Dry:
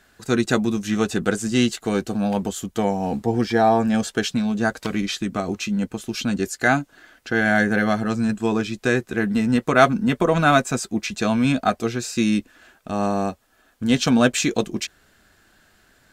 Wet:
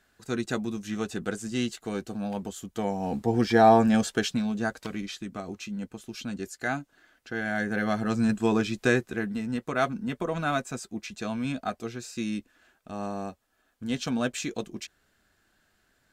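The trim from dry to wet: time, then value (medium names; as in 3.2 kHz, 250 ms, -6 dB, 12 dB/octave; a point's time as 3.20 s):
2.62 s -10 dB
3.71 s 0 dB
5.14 s -11.5 dB
7.52 s -11.5 dB
8.23 s -2.5 dB
8.90 s -2.5 dB
9.39 s -11.5 dB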